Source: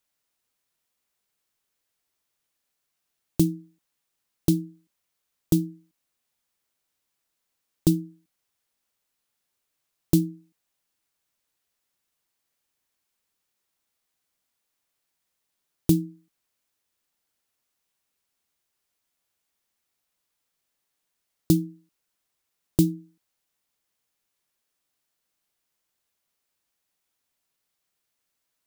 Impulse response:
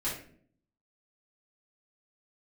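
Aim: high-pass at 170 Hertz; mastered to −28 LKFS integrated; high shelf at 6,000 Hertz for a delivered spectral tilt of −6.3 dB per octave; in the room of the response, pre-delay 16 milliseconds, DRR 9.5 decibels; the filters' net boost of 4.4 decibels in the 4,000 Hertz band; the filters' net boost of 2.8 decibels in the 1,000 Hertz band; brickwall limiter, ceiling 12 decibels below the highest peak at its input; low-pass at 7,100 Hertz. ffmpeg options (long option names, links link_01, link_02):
-filter_complex "[0:a]highpass=170,lowpass=7100,equalizer=frequency=1000:width_type=o:gain=3.5,equalizer=frequency=4000:width_type=o:gain=4.5,highshelf=frequency=6000:gain=3.5,alimiter=limit=-20dB:level=0:latency=1,asplit=2[link_01][link_02];[1:a]atrim=start_sample=2205,adelay=16[link_03];[link_02][link_03]afir=irnorm=-1:irlink=0,volume=-14.5dB[link_04];[link_01][link_04]amix=inputs=2:normalize=0,volume=4.5dB"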